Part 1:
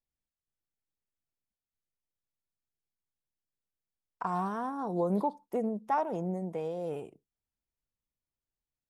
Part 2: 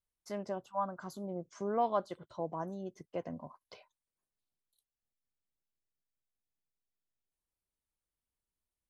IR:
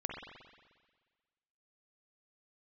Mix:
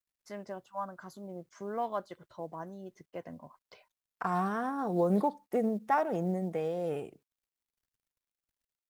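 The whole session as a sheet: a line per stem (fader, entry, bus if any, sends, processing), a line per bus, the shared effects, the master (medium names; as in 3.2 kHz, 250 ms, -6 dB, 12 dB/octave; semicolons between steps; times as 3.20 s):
+2.0 dB, 0.00 s, no send, band-stop 970 Hz, Q 6.1
-3.5 dB, 0.00 s, no send, none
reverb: none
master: peaking EQ 1.8 kHz +6 dB 0.71 oct; companded quantiser 8-bit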